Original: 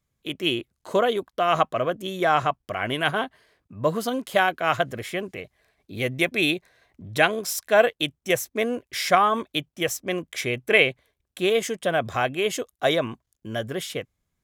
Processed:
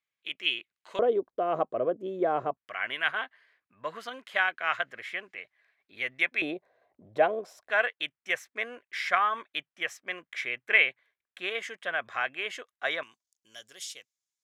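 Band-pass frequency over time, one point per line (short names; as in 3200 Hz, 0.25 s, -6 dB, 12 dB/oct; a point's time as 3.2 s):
band-pass, Q 1.7
2400 Hz
from 0.99 s 430 Hz
from 2.57 s 1900 Hz
from 6.42 s 620 Hz
from 7.7 s 1800 Hz
from 13.03 s 6000 Hz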